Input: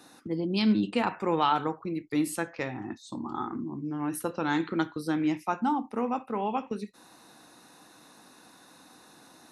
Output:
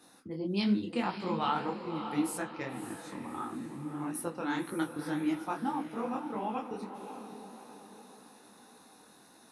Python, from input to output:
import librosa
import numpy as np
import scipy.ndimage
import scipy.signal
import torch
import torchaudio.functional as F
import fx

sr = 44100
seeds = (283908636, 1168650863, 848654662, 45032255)

y = fx.peak_eq(x, sr, hz=10000.0, db=6.5, octaves=0.21)
y = fx.echo_diffused(y, sr, ms=587, feedback_pct=47, wet_db=-9.0)
y = fx.detune_double(y, sr, cents=59)
y = F.gain(torch.from_numpy(y), -2.0).numpy()